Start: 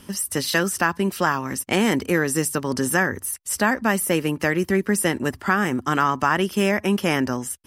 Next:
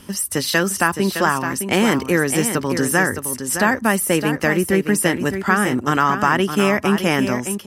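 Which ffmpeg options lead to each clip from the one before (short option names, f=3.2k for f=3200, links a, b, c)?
-af "aecho=1:1:613:0.376,volume=3dB"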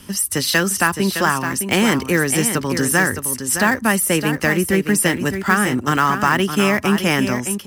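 -filter_complex "[0:a]equalizer=f=550:t=o:w=2.7:g=-4.5,acrossover=split=370|1300|3900[a][b][c][d];[c]acrusher=bits=3:mode=log:mix=0:aa=0.000001[e];[a][b][e][d]amix=inputs=4:normalize=0,volume=3dB"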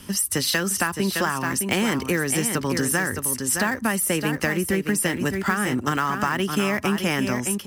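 -af "acompressor=threshold=-18dB:ratio=6,volume=-1dB"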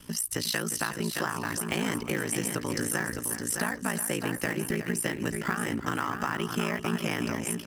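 -af "aecho=1:1:361|722:0.282|0.0479,aeval=exprs='val(0)*sin(2*PI*28*n/s)':c=same,volume=-4.5dB"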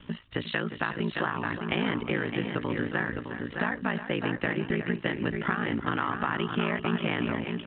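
-af "volume=1.5dB" -ar 8000 -c:a pcm_mulaw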